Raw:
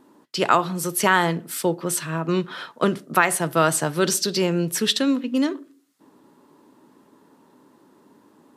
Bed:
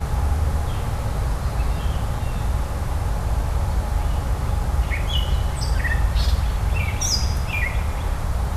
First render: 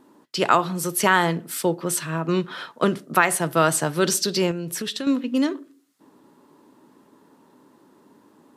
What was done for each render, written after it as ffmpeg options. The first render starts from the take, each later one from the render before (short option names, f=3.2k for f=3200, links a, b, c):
-filter_complex "[0:a]asettb=1/sr,asplit=3[a][b][c];[a]atrim=end=4.514[d];[b]atrim=start=4.51:end=5.07,asetpts=PTS-STARTPTS,afade=t=in:d=0.004:c=qsin,afade=t=out:st=0.556:d=0.004:c=qsin,acompressor=threshold=-25dB:ratio=6:attack=3.2:release=140:knee=1:detection=peak[e];[c]atrim=start=5.066[f];[d][e]acrossfade=d=0.004:c1=hsin:c2=qsin[g];[g][f]acrossfade=d=0.004:c1=qsin:c2=hsin"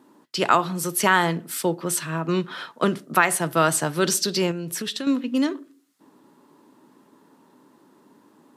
-af "highpass=110,equalizer=f=490:w=1.5:g=-2"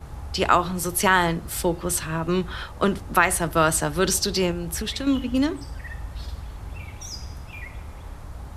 -filter_complex "[1:a]volume=-14.5dB[a];[0:a][a]amix=inputs=2:normalize=0"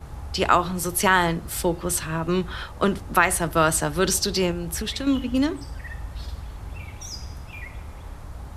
-af anull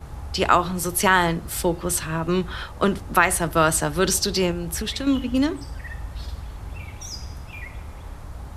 -af "volume=1dB"